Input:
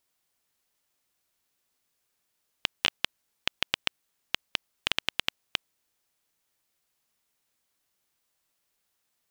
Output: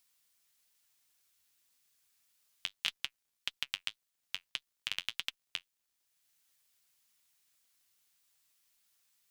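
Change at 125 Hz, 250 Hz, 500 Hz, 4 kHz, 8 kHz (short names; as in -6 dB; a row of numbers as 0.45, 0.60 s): -15.0, -18.0, -19.5, -7.5, -6.0 dB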